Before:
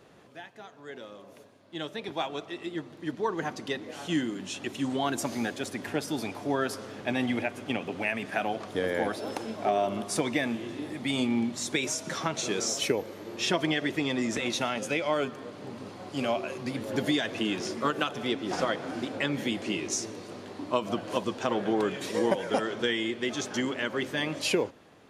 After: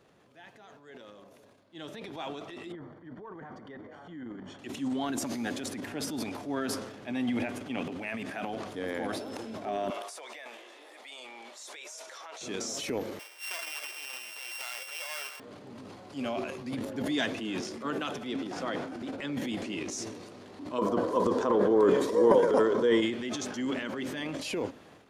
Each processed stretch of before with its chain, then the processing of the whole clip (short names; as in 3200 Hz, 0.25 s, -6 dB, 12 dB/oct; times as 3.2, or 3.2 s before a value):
2.72–4.59 polynomial smoothing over 41 samples + bell 310 Hz -3.5 dB 1.4 oct + compressor 4:1, threshold -35 dBFS
9.9–12.41 HPF 520 Hz 24 dB/oct + compressor, threshold -34 dBFS
13.19–15.4 sample sorter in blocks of 16 samples + Bessel high-pass 1100 Hz, order 4
16.89–19.63 HPF 56 Hz + three-band expander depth 40%
20.78–23.02 bell 2600 Hz -8.5 dB 0.6 oct + small resonant body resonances 460/1000 Hz, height 15 dB, ringing for 20 ms
whole clip: dynamic EQ 260 Hz, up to +7 dB, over -46 dBFS, Q 3.3; transient shaper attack -4 dB, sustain +10 dB; gain -7 dB